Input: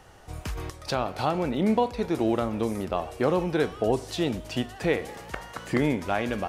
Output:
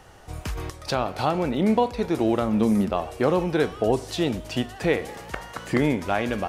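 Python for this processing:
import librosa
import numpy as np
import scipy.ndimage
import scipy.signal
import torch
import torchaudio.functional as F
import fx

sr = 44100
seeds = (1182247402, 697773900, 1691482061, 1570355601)

y = fx.peak_eq(x, sr, hz=210.0, db=fx.line((2.47, 7.0), (2.89, 13.5)), octaves=0.38, at=(2.47, 2.89), fade=0.02)
y = F.gain(torch.from_numpy(y), 2.5).numpy()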